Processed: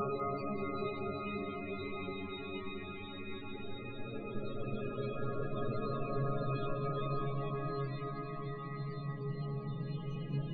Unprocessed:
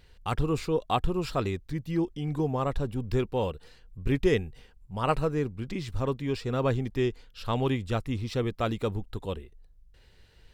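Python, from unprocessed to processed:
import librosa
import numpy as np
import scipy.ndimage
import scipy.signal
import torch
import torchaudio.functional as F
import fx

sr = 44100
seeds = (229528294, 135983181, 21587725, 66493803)

p1 = fx.reverse_delay(x, sr, ms=193, wet_db=-10)
p2 = fx.gate_flip(p1, sr, shuts_db=-26.0, range_db=-25)
p3 = fx.leveller(p2, sr, passes=5)
p4 = fx.resonator_bank(p3, sr, root=49, chord='fifth', decay_s=0.39)
p5 = fx.paulstretch(p4, sr, seeds[0], factor=24.0, window_s=0.25, from_s=1.45)
p6 = fx.spec_topn(p5, sr, count=32)
p7 = fx.hum_notches(p6, sr, base_hz=50, count=4)
p8 = p7 + fx.echo_thinned(p7, sr, ms=197, feedback_pct=74, hz=420.0, wet_db=-14.0, dry=0)
y = F.gain(torch.from_numpy(p8), 15.5).numpy()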